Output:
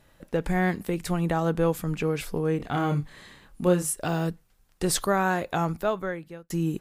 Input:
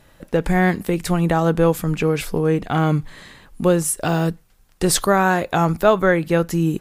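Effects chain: 2.57–3.93 doubler 28 ms -5.5 dB; 5.52–6.5 fade out; gain -7.5 dB

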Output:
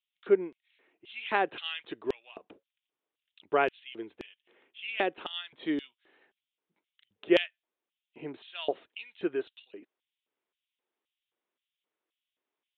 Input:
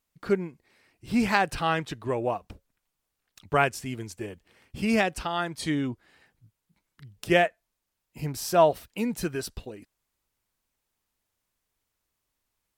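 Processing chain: downsampling 8000 Hz; LFO high-pass square 1.9 Hz 360–3100 Hz; gain -5.5 dB

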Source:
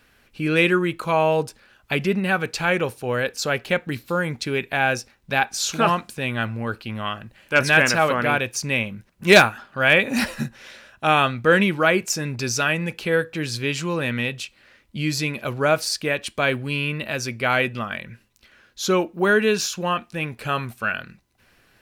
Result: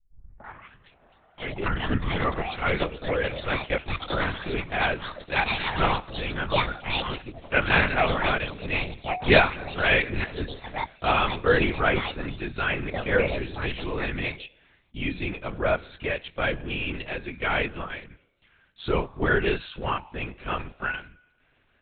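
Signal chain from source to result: tape start at the beginning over 2.89 s; resonator 98 Hz, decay 0.88 s, harmonics odd, mix 60%; in parallel at -8 dB: crossover distortion -41 dBFS; on the sum: echoes that change speed 0.33 s, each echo +7 st, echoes 3, each echo -6 dB; LPC vocoder at 8 kHz whisper

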